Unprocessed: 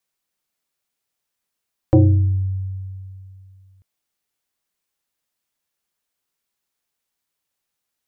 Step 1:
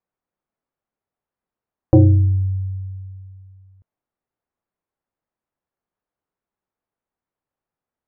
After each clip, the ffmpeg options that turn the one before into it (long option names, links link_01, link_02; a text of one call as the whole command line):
ffmpeg -i in.wav -af "lowpass=1100,volume=2dB" out.wav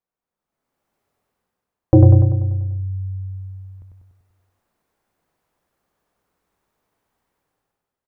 ffmpeg -i in.wav -filter_complex "[0:a]dynaudnorm=framelen=120:gausssize=11:maxgain=16.5dB,asplit=2[link_01][link_02];[link_02]aecho=0:1:97|194|291|388|485|582|679|776:0.668|0.388|0.225|0.13|0.0756|0.0439|0.0254|0.0148[link_03];[link_01][link_03]amix=inputs=2:normalize=0,volume=-3.5dB" out.wav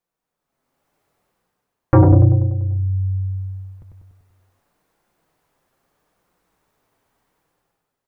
ffmpeg -i in.wav -af "aeval=exprs='0.891*sin(PI/2*2.24*val(0)/0.891)':channel_layout=same,flanger=delay=5.6:depth=2.3:regen=-49:speed=0.79:shape=triangular,volume=-1.5dB" out.wav